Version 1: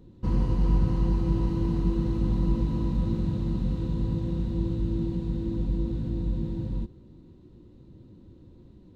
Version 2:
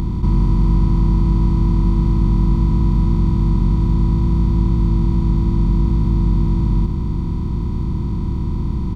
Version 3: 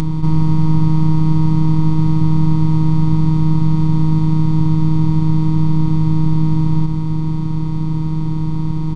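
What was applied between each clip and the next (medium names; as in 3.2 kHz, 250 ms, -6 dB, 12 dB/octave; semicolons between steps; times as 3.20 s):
spectral levelling over time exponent 0.2; comb 0.9 ms, depth 77%; upward compressor, threshold -34 dBFS
robot voice 157 Hz; resampled via 22.05 kHz; trim +6 dB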